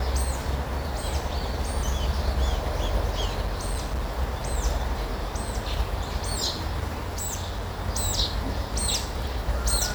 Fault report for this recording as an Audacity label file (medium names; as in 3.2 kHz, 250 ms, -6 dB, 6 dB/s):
3.460000	4.120000	clipped -24 dBFS
7.080000	7.710000	clipped -26.5 dBFS